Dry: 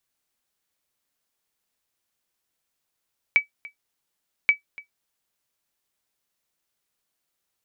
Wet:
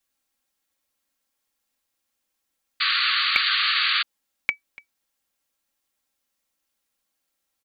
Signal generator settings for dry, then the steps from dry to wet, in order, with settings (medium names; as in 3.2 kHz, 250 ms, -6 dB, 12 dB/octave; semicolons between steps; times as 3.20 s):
sonar ping 2.29 kHz, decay 0.12 s, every 1.13 s, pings 2, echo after 0.29 s, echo -22 dB -8 dBFS
comb 3.7 ms, depth 60%; painted sound noise, 2.80–4.03 s, 1.1–4.7 kHz -22 dBFS